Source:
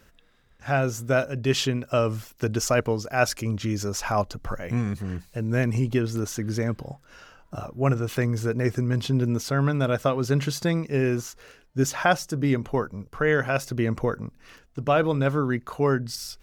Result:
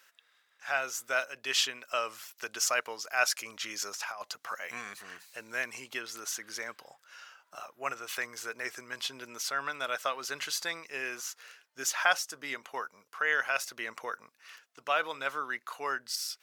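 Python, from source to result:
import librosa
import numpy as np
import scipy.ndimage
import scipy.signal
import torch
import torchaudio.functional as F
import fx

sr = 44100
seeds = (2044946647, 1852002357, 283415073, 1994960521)

y = scipy.signal.sosfilt(scipy.signal.butter(2, 1200.0, 'highpass', fs=sr, output='sos'), x)
y = fx.over_compress(y, sr, threshold_db=-35.0, ratio=-0.5, at=(3.41, 5.52))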